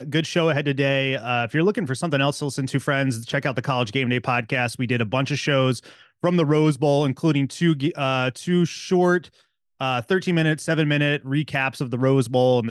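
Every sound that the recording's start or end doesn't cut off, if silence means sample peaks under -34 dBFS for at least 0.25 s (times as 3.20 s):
6.24–9.25 s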